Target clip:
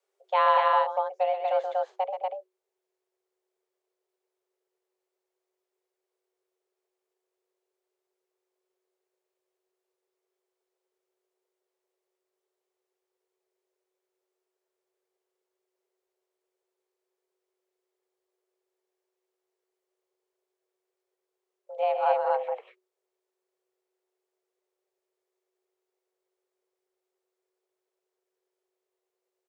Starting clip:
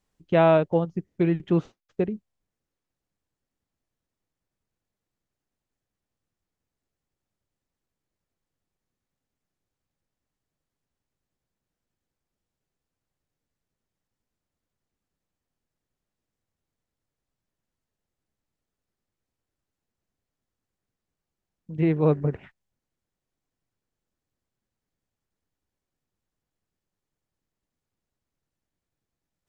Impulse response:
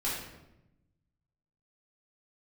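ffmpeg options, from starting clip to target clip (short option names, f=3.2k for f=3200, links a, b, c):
-af "aecho=1:1:128.3|239.1:0.398|0.794,afreqshift=370,volume=-4.5dB"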